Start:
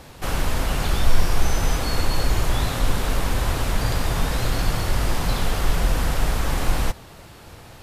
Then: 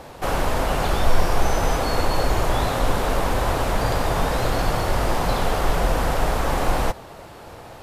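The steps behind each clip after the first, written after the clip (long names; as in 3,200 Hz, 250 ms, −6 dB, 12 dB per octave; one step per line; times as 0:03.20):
parametric band 660 Hz +10 dB 2.3 octaves
level −2 dB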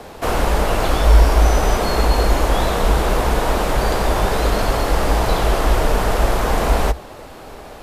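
frequency shifter −66 Hz
level +4 dB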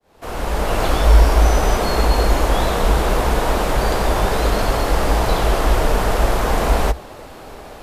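fade in at the beginning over 0.82 s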